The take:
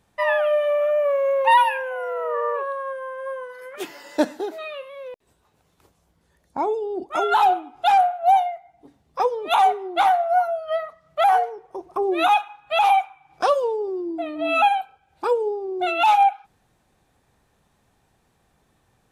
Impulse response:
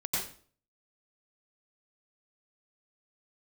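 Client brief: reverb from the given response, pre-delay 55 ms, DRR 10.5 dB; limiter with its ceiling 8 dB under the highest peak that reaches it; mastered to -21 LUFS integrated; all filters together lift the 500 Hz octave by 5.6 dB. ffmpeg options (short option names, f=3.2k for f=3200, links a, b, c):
-filter_complex "[0:a]equalizer=f=500:t=o:g=7,alimiter=limit=-12dB:level=0:latency=1,asplit=2[a][b];[1:a]atrim=start_sample=2205,adelay=55[c];[b][c]afir=irnorm=-1:irlink=0,volume=-16.5dB[d];[a][d]amix=inputs=2:normalize=0,volume=-0.5dB"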